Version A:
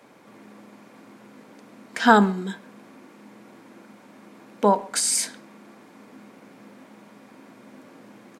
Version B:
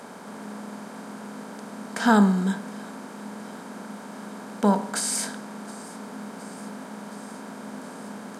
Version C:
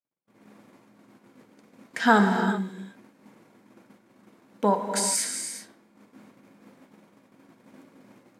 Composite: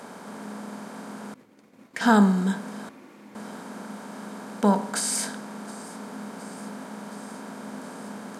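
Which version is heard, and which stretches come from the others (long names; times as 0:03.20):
B
0:01.34–0:02.01: punch in from C
0:02.89–0:03.35: punch in from A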